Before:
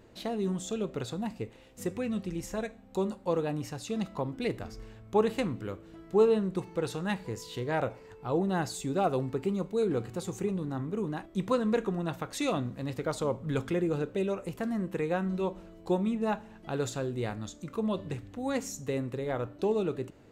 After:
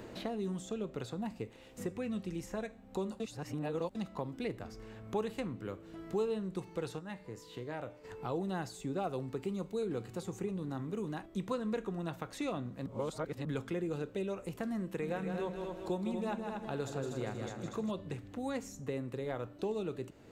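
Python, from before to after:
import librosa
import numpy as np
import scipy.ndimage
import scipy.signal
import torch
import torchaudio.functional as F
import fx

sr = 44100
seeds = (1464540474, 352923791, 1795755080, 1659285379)

y = fx.comb_fb(x, sr, f0_hz=300.0, decay_s=0.59, harmonics='all', damping=0.0, mix_pct=70, at=(6.98, 8.03), fade=0.02)
y = fx.echo_heads(y, sr, ms=79, heads='second and third', feedback_pct=41, wet_db=-7.5, at=(15.01, 17.9), fade=0.02)
y = fx.edit(y, sr, fx.reverse_span(start_s=3.2, length_s=0.75),
    fx.reverse_span(start_s=12.86, length_s=0.59), tone=tone)
y = fx.band_squash(y, sr, depth_pct=70)
y = F.gain(torch.from_numpy(y), -7.0).numpy()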